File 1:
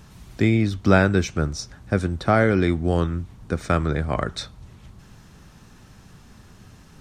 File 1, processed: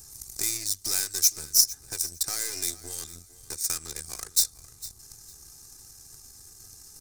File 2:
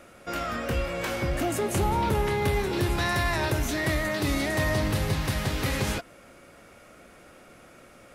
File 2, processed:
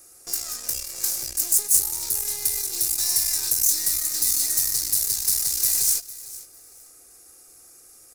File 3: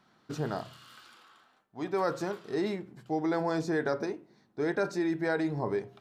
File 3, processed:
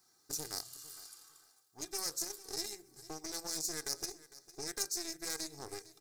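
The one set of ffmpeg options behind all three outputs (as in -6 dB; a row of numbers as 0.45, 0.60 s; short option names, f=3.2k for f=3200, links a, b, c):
-filter_complex "[0:a]aecho=1:1:2.5:0.7,acrossover=split=2200[a][b];[a]acompressor=threshold=-38dB:ratio=4[c];[c][b]amix=inputs=2:normalize=0,aeval=exprs='0.158*(cos(1*acos(clip(val(0)/0.158,-1,1)))-cos(1*PI/2))+0.0282*(cos(6*acos(clip(val(0)/0.158,-1,1)))-cos(6*PI/2))+0.0355*(cos(8*acos(clip(val(0)/0.158,-1,1)))-cos(8*PI/2))':c=same,asplit=2[d][e];[e]acrusher=bits=4:mix=0:aa=0.5,volume=-4dB[f];[d][f]amix=inputs=2:normalize=0,aecho=1:1:454|908:0.126|0.0264,aexciter=amount=15.8:drive=5.4:freq=4.8k,volume=-13dB"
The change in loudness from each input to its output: -3.5, +6.5, -7.5 LU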